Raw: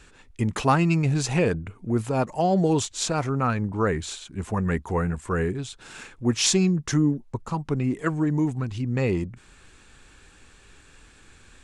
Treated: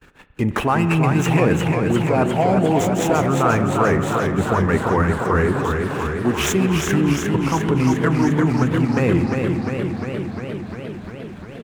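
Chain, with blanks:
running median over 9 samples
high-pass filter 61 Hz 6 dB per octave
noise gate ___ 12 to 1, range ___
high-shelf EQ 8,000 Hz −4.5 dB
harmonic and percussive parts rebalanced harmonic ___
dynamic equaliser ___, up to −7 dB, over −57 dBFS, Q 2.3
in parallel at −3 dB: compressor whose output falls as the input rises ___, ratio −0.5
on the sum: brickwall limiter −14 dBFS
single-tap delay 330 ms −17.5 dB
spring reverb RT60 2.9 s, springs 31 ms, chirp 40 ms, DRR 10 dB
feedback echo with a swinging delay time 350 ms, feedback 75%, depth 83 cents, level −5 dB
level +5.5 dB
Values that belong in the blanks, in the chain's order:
−54 dBFS, −28 dB, −6 dB, 4,500 Hz, −29 dBFS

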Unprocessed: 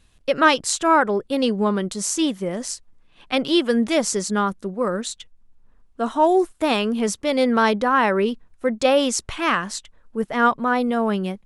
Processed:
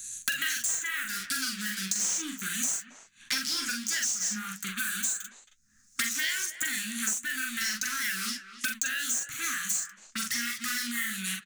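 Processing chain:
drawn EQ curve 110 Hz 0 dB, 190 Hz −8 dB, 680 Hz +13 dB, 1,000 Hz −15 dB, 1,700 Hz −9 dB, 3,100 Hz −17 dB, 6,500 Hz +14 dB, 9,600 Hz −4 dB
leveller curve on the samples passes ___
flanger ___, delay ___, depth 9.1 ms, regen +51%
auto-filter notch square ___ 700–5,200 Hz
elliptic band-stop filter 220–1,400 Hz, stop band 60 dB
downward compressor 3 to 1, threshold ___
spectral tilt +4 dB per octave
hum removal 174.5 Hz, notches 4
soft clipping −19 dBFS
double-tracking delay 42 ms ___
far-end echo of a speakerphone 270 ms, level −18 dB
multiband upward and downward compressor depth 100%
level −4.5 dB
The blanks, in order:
3, 1.5 Hz, 6.3 ms, 0.46 Hz, −31 dBFS, −3 dB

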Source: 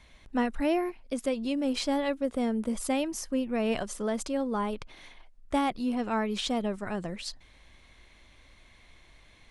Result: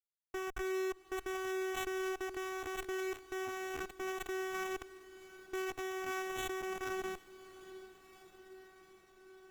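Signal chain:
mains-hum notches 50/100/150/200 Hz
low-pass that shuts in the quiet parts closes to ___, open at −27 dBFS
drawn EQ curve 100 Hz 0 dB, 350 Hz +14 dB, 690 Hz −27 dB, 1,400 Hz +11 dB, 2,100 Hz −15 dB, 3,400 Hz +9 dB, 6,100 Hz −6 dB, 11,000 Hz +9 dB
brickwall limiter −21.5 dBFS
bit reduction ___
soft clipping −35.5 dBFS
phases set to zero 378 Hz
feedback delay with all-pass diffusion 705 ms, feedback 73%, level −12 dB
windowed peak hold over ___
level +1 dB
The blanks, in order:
330 Hz, 5 bits, 9 samples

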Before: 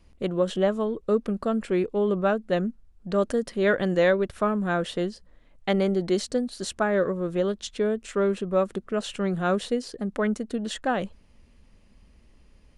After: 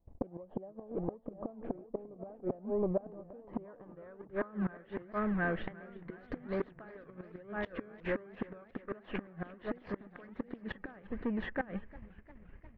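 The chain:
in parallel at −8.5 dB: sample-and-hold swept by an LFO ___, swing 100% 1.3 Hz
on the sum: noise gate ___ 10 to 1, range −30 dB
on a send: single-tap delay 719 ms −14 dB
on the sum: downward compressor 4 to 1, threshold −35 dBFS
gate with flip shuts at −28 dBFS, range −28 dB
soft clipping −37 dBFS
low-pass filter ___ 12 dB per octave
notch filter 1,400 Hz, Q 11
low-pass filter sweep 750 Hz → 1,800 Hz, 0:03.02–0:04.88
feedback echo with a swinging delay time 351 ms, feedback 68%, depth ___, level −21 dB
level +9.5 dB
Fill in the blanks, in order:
32×, −47 dBFS, 2,700 Hz, 103 cents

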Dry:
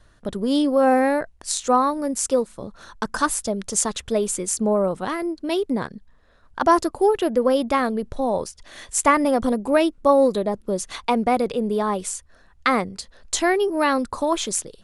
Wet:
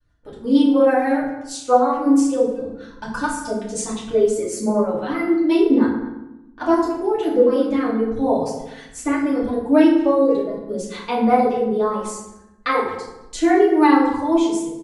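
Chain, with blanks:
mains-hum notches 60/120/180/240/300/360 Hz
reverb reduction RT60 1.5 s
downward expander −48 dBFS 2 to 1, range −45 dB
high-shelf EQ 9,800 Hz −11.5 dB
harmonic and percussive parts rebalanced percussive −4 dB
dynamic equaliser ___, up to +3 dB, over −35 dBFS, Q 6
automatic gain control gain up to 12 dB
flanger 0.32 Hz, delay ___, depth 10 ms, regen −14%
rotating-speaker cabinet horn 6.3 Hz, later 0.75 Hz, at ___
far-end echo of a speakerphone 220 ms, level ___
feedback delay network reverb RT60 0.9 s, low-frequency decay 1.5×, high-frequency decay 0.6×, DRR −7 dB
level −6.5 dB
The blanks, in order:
340 Hz, 0.6 ms, 0:06.42, −16 dB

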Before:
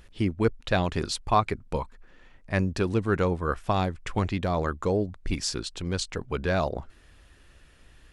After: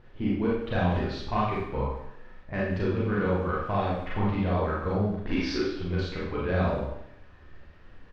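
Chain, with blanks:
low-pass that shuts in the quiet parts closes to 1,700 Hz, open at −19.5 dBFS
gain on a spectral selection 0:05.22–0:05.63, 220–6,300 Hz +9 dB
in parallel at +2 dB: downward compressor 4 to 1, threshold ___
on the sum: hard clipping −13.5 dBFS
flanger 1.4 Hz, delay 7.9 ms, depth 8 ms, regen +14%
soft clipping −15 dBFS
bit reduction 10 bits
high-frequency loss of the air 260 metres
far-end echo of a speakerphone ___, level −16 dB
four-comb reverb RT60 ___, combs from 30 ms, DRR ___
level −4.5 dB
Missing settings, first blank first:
−36 dBFS, 170 ms, 0.7 s, −5.5 dB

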